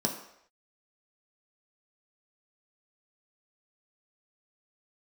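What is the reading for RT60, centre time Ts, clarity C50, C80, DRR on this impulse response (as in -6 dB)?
not exponential, 24 ms, 8.0 dB, 10.5 dB, 0.5 dB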